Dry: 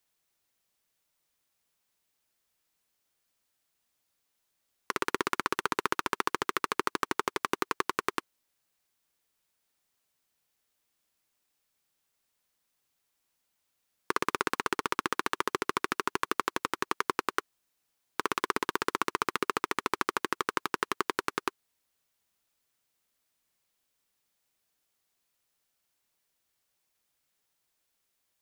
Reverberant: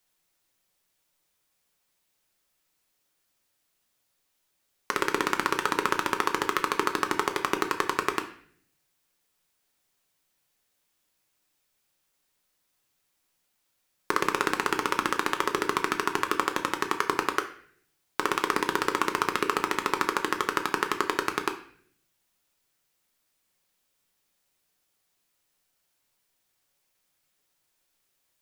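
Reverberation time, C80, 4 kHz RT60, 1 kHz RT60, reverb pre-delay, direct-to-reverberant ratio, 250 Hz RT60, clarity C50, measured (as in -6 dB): 0.55 s, 14.5 dB, 0.50 s, 0.55 s, 5 ms, 5.0 dB, 0.85 s, 11.0 dB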